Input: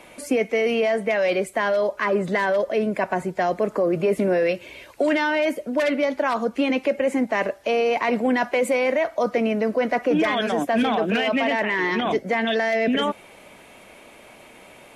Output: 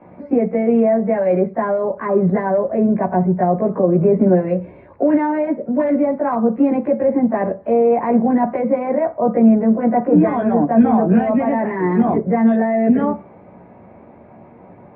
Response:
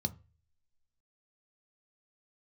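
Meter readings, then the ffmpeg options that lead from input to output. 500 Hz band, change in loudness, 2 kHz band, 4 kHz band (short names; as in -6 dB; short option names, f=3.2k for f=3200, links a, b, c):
+4.0 dB, +5.5 dB, -8.5 dB, under -25 dB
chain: -filter_complex "[0:a]lowpass=f=1.5k:w=0.5412,lowpass=f=1.5k:w=1.3066,asplit=2[a][b];[1:a]atrim=start_sample=2205,adelay=16[c];[b][c]afir=irnorm=-1:irlink=0,volume=4dB[d];[a][d]amix=inputs=2:normalize=0,volume=-4.5dB"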